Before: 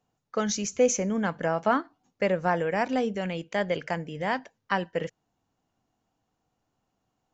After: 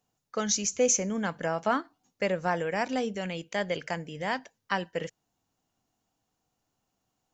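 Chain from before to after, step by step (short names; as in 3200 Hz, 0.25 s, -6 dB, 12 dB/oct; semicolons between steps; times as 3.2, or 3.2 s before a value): high shelf 3800 Hz +10.5 dB; gain -3.5 dB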